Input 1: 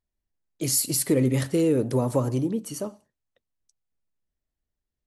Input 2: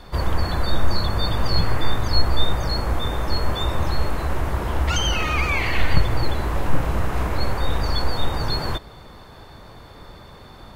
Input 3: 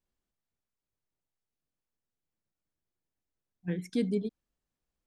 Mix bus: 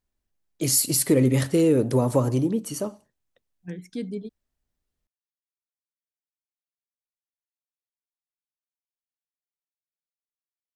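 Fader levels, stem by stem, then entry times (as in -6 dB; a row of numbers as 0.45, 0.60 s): +2.5 dB, off, -2.5 dB; 0.00 s, off, 0.00 s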